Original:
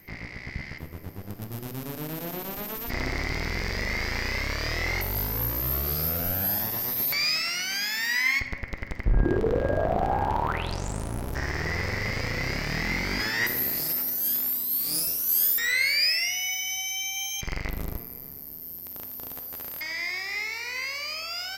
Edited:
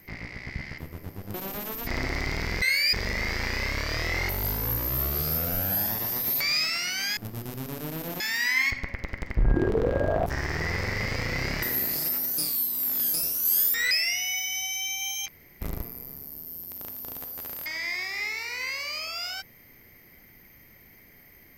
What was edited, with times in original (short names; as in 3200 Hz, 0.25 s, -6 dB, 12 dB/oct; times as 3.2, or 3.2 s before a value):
1.34–2.37 move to 7.89
9.95–11.31 cut
12.67–13.46 cut
14.22–14.98 reverse
15.75–16.06 move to 3.65
17.43–17.76 room tone